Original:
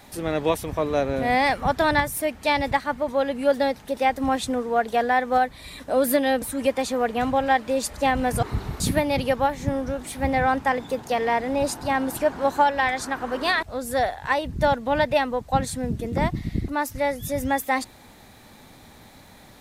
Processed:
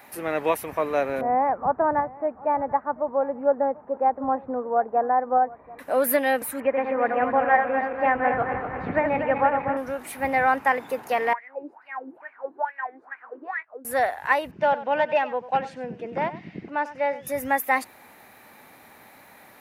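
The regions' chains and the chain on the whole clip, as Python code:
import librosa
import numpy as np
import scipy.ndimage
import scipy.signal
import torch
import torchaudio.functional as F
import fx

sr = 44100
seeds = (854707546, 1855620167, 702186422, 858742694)

y = fx.chain(x, sr, fx.lowpass(hz=1100.0, slope=24),
    fx.echo_single(ms=738, db=-21.5), at=(1.21, 5.79))
y = fx.chain(y, sr, fx.reverse_delay_fb(ms=121, feedback_pct=72, wet_db=-5.5),
    fx.lowpass(hz=2100.0, slope=24), at=(6.6, 9.77))
y = fx.chain(y, sr, fx.high_shelf(hz=2800.0, db=-9.0),
    fx.doubler(ms=19.0, db=-12.0),
    fx.wah_lfo(hz=2.3, low_hz=290.0, high_hz=2300.0, q=9.0), at=(11.33, 13.85))
y = fx.chain(y, sr, fx.overload_stage(gain_db=13.0),
    fx.cabinet(low_hz=170.0, low_slope=12, high_hz=4800.0, hz=(180.0, 260.0, 1200.0, 2000.0, 2900.0, 4100.0), db=(4, -5, -6, -6, 3, -8)),
    fx.echo_single(ms=95, db=-15.0), at=(14.51, 17.27))
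y = fx.highpass(y, sr, hz=710.0, slope=6)
y = fx.band_shelf(y, sr, hz=5300.0, db=-10.5, octaves=1.7)
y = fx.notch(y, sr, hz=3400.0, q=23.0)
y = F.gain(torch.from_numpy(y), 3.5).numpy()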